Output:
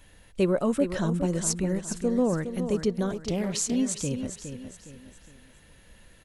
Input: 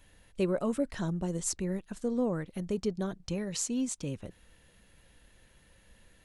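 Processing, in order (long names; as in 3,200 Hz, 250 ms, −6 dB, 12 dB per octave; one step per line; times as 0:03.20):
repeating echo 413 ms, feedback 37%, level −9 dB
0:03.13–0:03.76: highs frequency-modulated by the lows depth 0.31 ms
level +5.5 dB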